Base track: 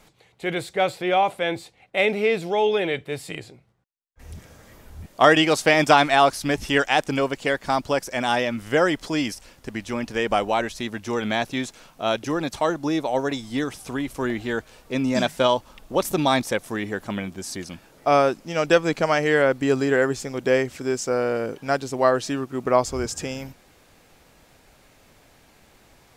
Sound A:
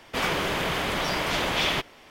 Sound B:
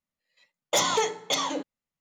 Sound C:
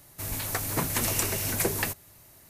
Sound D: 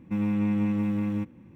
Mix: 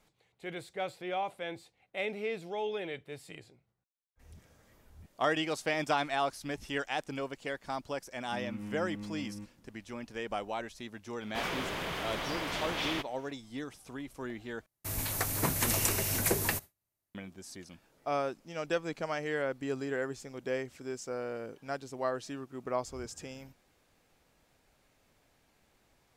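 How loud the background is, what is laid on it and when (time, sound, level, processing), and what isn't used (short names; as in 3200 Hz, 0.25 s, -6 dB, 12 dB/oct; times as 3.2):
base track -14.5 dB
8.21 add D -15.5 dB
11.21 add A -9.5 dB
14.66 replace with C -2 dB + gate with hold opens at -40 dBFS, closes at -48 dBFS, hold 22 ms, range -32 dB
not used: B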